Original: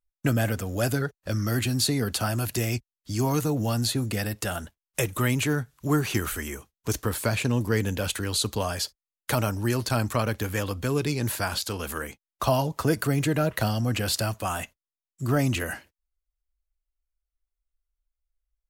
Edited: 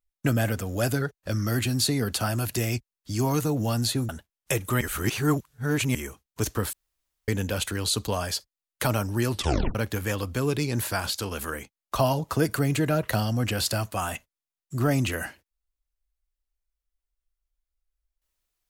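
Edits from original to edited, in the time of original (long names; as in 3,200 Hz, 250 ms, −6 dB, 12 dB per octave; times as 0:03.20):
0:04.09–0:04.57: remove
0:05.29–0:06.43: reverse
0:07.21–0:07.76: fill with room tone
0:09.79: tape stop 0.44 s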